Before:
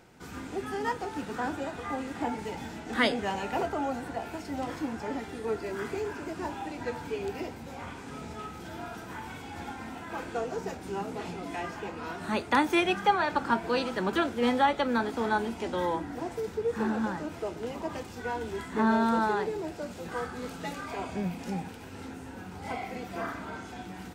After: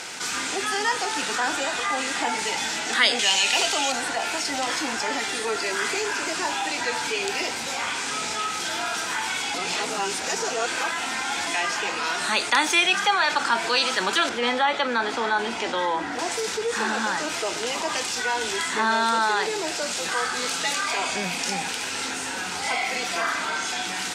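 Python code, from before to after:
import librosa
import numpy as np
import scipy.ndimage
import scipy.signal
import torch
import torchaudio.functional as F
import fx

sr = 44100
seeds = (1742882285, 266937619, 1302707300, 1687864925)

y = fx.high_shelf_res(x, sr, hz=2100.0, db=9.0, q=1.5, at=(3.19, 3.92))
y = fx.lowpass(y, sr, hz=1900.0, slope=6, at=(14.29, 16.19))
y = fx.edit(y, sr, fx.reverse_span(start_s=9.54, length_s=1.93), tone=tone)
y = fx.weighting(y, sr, curve='ITU-R 468')
y = fx.env_flatten(y, sr, amount_pct=50)
y = y * 10.0 ** (1.0 / 20.0)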